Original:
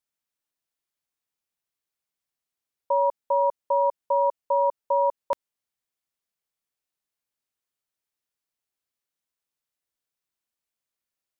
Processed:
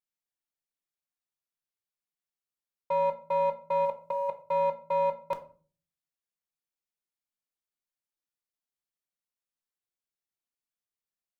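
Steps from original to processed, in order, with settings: 3.85–4.42 s: compressor with a negative ratio -25 dBFS, ratio -0.5; waveshaping leveller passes 1; simulated room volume 280 m³, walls furnished, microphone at 0.9 m; trim -7.5 dB

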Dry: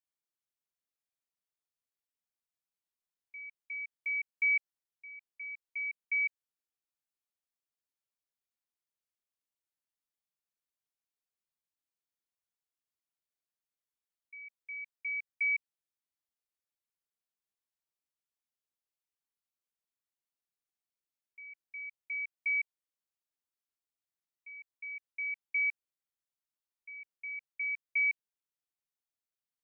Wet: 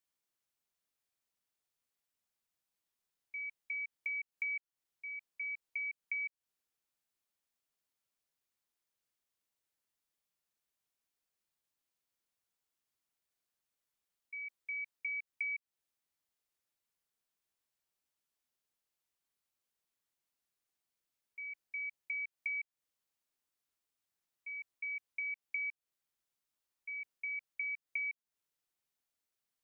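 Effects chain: compression, threshold -42 dBFS, peak gain reduction 14.5 dB; trim +4.5 dB

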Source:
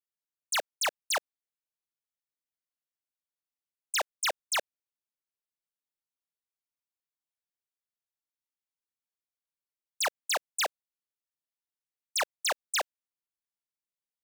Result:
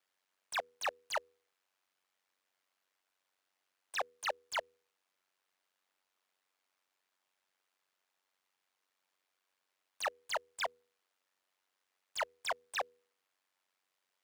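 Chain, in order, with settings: overdrive pedal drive 30 dB, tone 1.6 kHz, clips at -26 dBFS; peaking EQ 130 Hz -5 dB 2.7 oct; ring modulator 47 Hz; de-hum 81.09 Hz, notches 6

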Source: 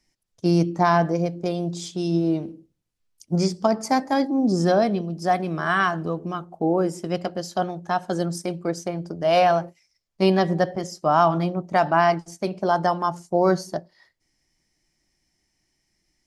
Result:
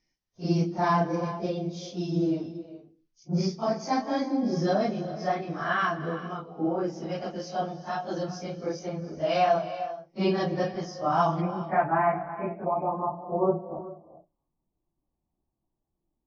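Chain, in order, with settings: phase randomisation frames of 100 ms; steep low-pass 6.4 kHz 96 dB/octave, from 11.40 s 2.5 kHz, from 12.64 s 1.2 kHz; gated-style reverb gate 440 ms rising, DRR 12 dB; trim -6 dB

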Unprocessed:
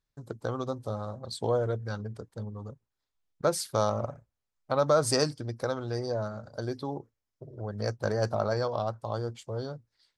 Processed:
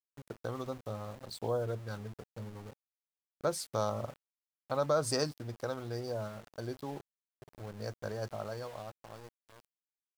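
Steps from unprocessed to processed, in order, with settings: fade out at the end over 3.21 s; small samples zeroed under -41.5 dBFS; trim -6 dB

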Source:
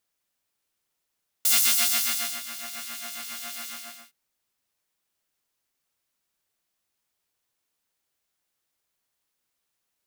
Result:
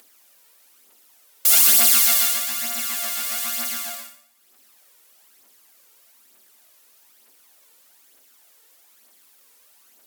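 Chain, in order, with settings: in parallel at -7 dB: sine folder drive 13 dB, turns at -6 dBFS; on the sum: flutter echo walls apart 10 m, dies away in 0.56 s; phaser 1.1 Hz, delay 2.3 ms, feedback 48%; elliptic high-pass 220 Hz, stop band 40 dB; peaking EQ 15 kHz +6 dB 0.99 oct; upward compressor, threshold -37 dBFS; trim -5.5 dB

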